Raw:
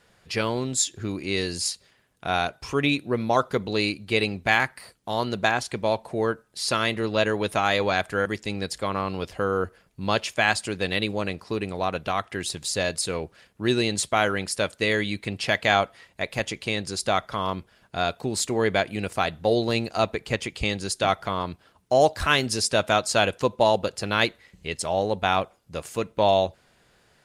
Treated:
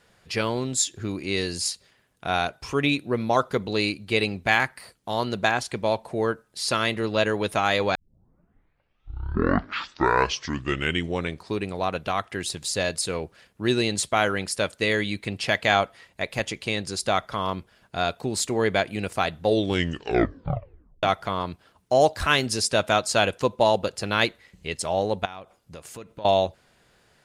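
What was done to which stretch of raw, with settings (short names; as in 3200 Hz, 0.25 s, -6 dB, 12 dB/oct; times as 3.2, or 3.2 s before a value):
7.95 tape start 3.73 s
19.45 tape stop 1.58 s
25.25–26.25 compressor 4:1, threshold -38 dBFS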